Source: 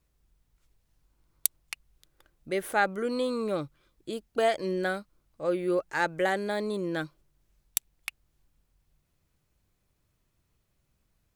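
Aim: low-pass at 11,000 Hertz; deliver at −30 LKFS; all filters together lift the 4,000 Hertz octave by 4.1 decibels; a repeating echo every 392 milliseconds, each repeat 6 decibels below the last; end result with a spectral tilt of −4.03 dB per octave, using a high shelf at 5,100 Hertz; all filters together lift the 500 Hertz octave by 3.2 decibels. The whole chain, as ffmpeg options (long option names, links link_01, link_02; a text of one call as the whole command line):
ffmpeg -i in.wav -af "lowpass=11000,equalizer=frequency=500:width_type=o:gain=4,equalizer=frequency=4000:width_type=o:gain=7,highshelf=frequency=5100:gain=-5,aecho=1:1:392|784|1176|1568|1960|2352:0.501|0.251|0.125|0.0626|0.0313|0.0157,volume=-2dB" out.wav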